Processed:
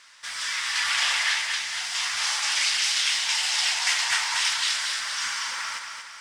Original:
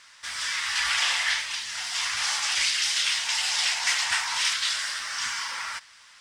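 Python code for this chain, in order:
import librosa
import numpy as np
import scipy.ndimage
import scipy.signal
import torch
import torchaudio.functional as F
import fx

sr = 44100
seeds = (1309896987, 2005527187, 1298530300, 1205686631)

y = fx.low_shelf(x, sr, hz=130.0, db=-10.0)
y = fx.echo_feedback(y, sr, ms=231, feedback_pct=53, wet_db=-6.0)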